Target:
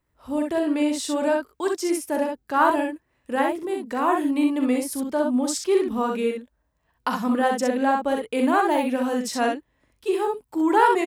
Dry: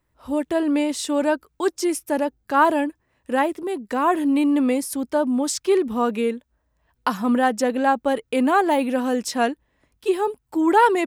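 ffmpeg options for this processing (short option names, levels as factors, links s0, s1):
-af "aecho=1:1:41|64:0.376|0.631,volume=0.668"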